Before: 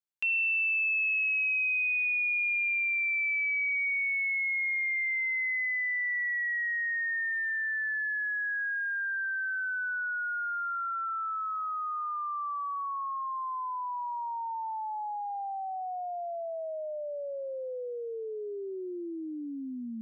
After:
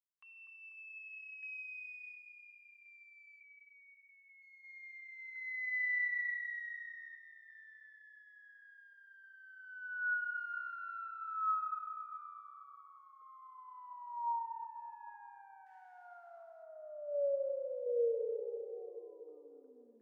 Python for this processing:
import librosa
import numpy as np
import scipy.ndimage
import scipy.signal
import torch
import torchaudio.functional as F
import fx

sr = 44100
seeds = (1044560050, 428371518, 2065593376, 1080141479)

p1 = fx.cvsd(x, sr, bps=64000, at=(15.66, 16.63))
p2 = fx.low_shelf(p1, sr, hz=140.0, db=10.5)
p3 = fx.cheby_harmonics(p2, sr, harmonics=(4, 5), levels_db=(-28, -32), full_scale_db=-24.0)
p4 = fx.tremolo_random(p3, sr, seeds[0], hz=2.8, depth_pct=55)
p5 = fx.wah_lfo(p4, sr, hz=0.21, low_hz=460.0, high_hz=1800.0, q=12.0)
p6 = p5 + fx.echo_filtered(p5, sr, ms=246, feedback_pct=67, hz=1400.0, wet_db=-8.0, dry=0)
p7 = fx.rev_plate(p6, sr, seeds[1], rt60_s=3.6, hf_ratio=0.55, predelay_ms=0, drr_db=10.5)
p8 = fx.lpc_vocoder(p7, sr, seeds[2], excitation='pitch_kept', order=10, at=(3.4, 4.42))
y = p8 * 10.0 ** (4.0 / 20.0)